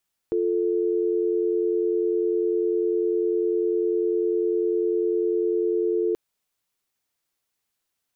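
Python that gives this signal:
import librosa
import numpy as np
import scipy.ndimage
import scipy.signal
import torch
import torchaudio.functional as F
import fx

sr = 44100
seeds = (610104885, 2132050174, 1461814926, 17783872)

y = fx.call_progress(sr, length_s=5.83, kind='dial tone', level_db=-23.0)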